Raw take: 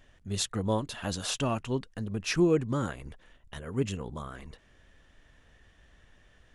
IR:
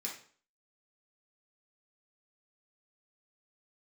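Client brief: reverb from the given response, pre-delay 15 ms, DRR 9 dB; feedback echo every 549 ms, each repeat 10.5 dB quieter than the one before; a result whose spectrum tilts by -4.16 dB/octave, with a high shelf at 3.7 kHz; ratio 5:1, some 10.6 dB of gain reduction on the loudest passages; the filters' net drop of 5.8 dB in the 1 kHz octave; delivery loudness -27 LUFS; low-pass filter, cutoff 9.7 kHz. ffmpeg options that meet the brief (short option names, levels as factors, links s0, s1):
-filter_complex "[0:a]lowpass=9700,equalizer=f=1000:t=o:g=-8,highshelf=f=3700:g=6,acompressor=threshold=0.0251:ratio=5,aecho=1:1:549|1098|1647:0.299|0.0896|0.0269,asplit=2[s0][s1];[1:a]atrim=start_sample=2205,adelay=15[s2];[s1][s2]afir=irnorm=-1:irlink=0,volume=0.355[s3];[s0][s3]amix=inputs=2:normalize=0,volume=2.99"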